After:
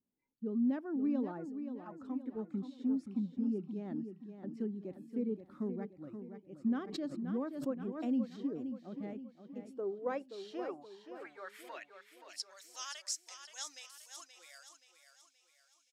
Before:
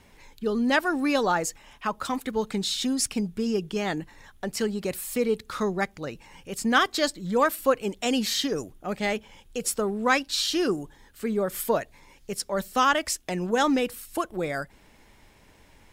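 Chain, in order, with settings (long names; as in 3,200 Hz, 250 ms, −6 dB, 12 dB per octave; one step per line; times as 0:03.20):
band-pass filter sweep 250 Hz → 6,000 Hz, 0:09.59–0:12.62
noise reduction from a noise print of the clip's start 20 dB
on a send: repeating echo 526 ms, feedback 44%, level −9 dB
0:06.83–0:08.41: on the sum: background raised ahead of every attack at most 77 dB per second
level −5.5 dB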